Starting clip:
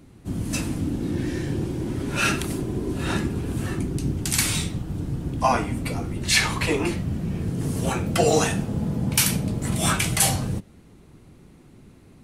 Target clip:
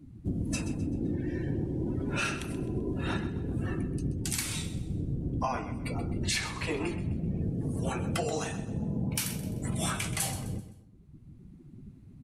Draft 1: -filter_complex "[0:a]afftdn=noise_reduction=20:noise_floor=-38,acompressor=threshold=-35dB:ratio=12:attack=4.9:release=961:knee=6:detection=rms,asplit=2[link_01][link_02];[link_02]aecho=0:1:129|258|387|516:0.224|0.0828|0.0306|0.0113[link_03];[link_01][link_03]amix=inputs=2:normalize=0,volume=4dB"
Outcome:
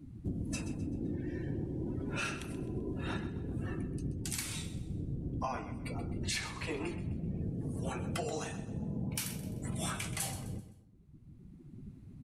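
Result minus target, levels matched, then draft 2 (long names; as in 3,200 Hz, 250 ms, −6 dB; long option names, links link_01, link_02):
downward compressor: peak gain reduction +5.5 dB
-filter_complex "[0:a]afftdn=noise_reduction=20:noise_floor=-38,acompressor=threshold=-29dB:ratio=12:attack=4.9:release=961:knee=6:detection=rms,asplit=2[link_01][link_02];[link_02]aecho=0:1:129|258|387|516:0.224|0.0828|0.0306|0.0113[link_03];[link_01][link_03]amix=inputs=2:normalize=0,volume=4dB"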